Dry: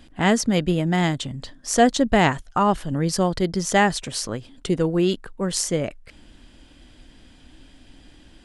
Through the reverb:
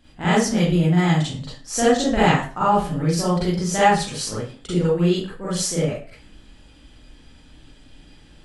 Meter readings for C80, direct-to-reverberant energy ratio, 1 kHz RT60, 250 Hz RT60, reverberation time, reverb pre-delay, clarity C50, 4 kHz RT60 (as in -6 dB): 6.0 dB, -10.5 dB, 0.40 s, 0.40 s, 0.40 s, 36 ms, -1.5 dB, 0.35 s